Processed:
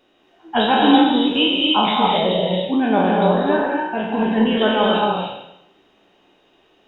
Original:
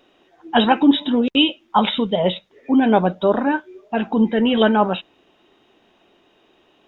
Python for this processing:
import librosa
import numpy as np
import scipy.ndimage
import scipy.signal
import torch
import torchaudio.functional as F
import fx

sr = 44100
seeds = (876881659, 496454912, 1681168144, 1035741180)

y = fx.spec_trails(x, sr, decay_s=0.84)
y = fx.rev_gated(y, sr, seeds[0], gate_ms=300, shape='rising', drr_db=-0.5)
y = F.gain(torch.from_numpy(y), -5.0).numpy()